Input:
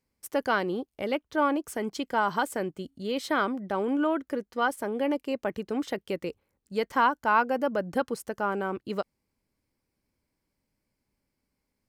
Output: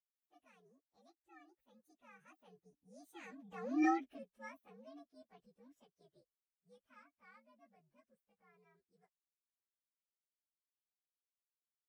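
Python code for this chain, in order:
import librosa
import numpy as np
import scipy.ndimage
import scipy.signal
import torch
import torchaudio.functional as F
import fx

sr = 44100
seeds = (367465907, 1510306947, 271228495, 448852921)

y = fx.partial_stretch(x, sr, pct=126)
y = fx.doppler_pass(y, sr, speed_mps=16, closest_m=1.0, pass_at_s=3.85)
y = y * 10.0 ** (-2.5 / 20.0)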